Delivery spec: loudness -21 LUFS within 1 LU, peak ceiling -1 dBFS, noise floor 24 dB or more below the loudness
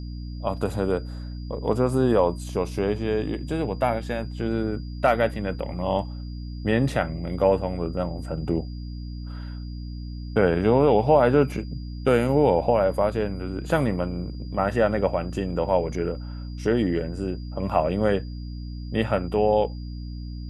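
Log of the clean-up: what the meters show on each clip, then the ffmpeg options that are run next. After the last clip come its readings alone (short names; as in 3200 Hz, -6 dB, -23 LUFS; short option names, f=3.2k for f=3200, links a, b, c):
hum 60 Hz; harmonics up to 300 Hz; hum level -31 dBFS; steady tone 4800 Hz; tone level -51 dBFS; loudness -24.5 LUFS; peak -6.5 dBFS; loudness target -21.0 LUFS
-> -af "bandreject=f=60:t=h:w=6,bandreject=f=120:t=h:w=6,bandreject=f=180:t=h:w=6,bandreject=f=240:t=h:w=6,bandreject=f=300:t=h:w=6"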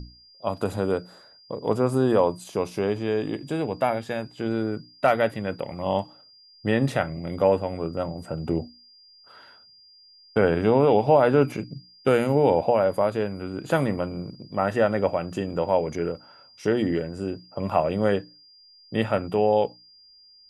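hum none; steady tone 4800 Hz; tone level -51 dBFS
-> -af "bandreject=f=4.8k:w=30"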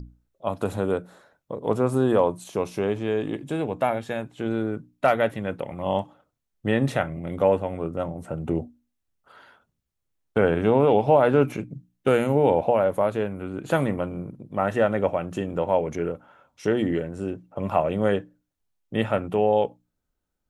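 steady tone none; loudness -24.5 LUFS; peak -7.0 dBFS; loudness target -21.0 LUFS
-> -af "volume=3.5dB"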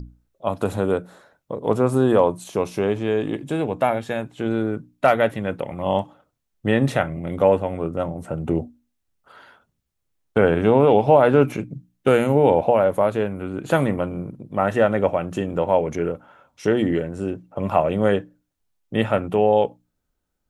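loudness -21.0 LUFS; peak -3.5 dBFS; noise floor -76 dBFS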